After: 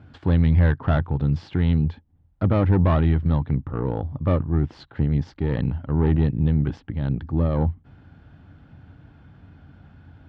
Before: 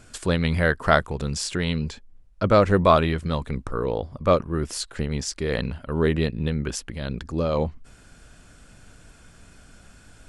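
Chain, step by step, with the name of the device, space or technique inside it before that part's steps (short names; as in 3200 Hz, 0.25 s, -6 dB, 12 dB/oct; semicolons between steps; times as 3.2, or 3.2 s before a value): guitar amplifier (tube stage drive 18 dB, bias 0.4; tone controls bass +9 dB, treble -2 dB; speaker cabinet 76–3400 Hz, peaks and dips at 86 Hz +9 dB, 140 Hz +6 dB, 290 Hz +8 dB, 830 Hz +9 dB, 2500 Hz -5 dB); gain -3.5 dB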